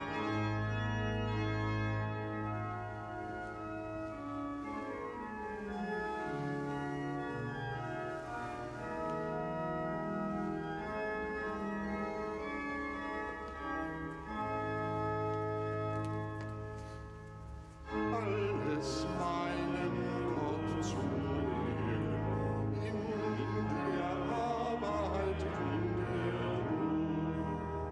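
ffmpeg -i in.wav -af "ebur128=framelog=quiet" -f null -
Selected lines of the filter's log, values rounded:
Integrated loudness:
  I:         -37.5 LUFS
  Threshold: -47.6 LUFS
Loudness range:
  LRA:         4.1 LU
  Threshold: -57.8 LUFS
  LRA low:   -39.9 LUFS
  LRA high:  -35.8 LUFS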